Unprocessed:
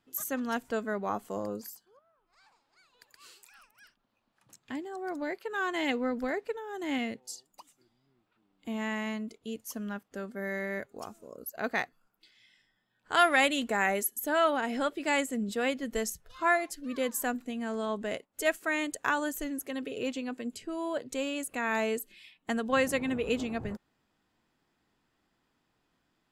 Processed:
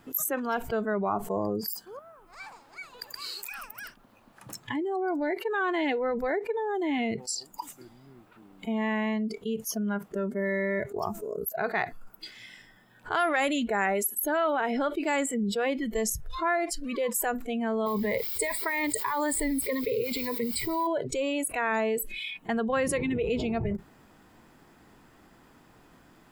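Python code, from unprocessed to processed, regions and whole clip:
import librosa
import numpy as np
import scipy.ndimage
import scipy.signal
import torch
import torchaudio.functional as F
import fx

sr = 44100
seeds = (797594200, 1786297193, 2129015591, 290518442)

y = fx.chain(x, sr, fx.ripple_eq(per_octave=0.96, db=14),
    fx.over_compress(threshold_db=-33.0, ratio=-1.0),
    fx.quant_dither(seeds[0], bits=8, dither='triangular'), at=(17.86, 20.87))
y = fx.noise_reduce_blind(y, sr, reduce_db=17)
y = fx.peak_eq(y, sr, hz=3900.0, db=-7.5, octaves=1.7)
y = fx.env_flatten(y, sr, amount_pct=70)
y = y * librosa.db_to_amplitude(-3.0)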